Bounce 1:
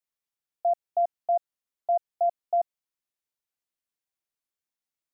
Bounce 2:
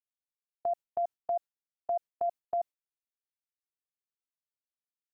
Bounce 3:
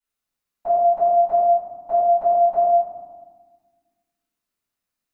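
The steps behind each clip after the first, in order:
gate with hold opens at -20 dBFS; in parallel at -2 dB: negative-ratio compressor -30 dBFS, ratio -1; on the sum: gain -9 dB
reverb RT60 1.5 s, pre-delay 3 ms, DRR -16 dB; gain -5.5 dB

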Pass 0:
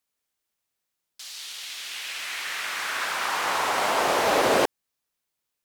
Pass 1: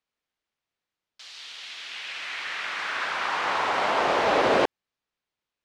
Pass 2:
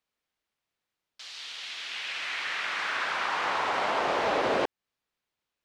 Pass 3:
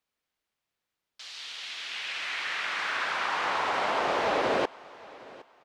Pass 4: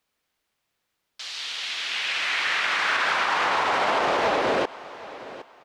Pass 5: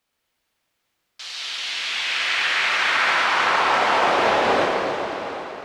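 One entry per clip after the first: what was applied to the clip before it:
LPF 3900 Hz 12 dB/oct
compressor 2:1, threshold -29 dBFS, peak gain reduction 7 dB; gain +1 dB
feedback echo 0.763 s, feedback 27%, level -21 dB
limiter -22 dBFS, peak gain reduction 7.5 dB; gain +8 dB
plate-style reverb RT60 3.6 s, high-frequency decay 0.9×, DRR -2 dB

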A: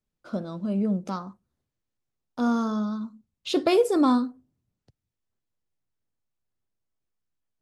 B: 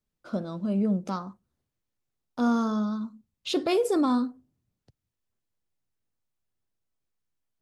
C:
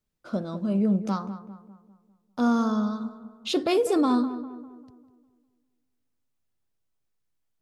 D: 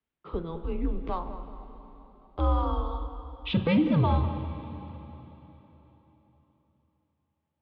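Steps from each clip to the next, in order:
limiter -17 dBFS, peak gain reduction 7 dB
darkening echo 0.2 s, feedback 47%, low-pass 1800 Hz, level -12 dB; gain +1.5 dB
plate-style reverb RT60 4 s, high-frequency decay 0.9×, DRR 9.5 dB; mistuned SSB -170 Hz 240–3500 Hz

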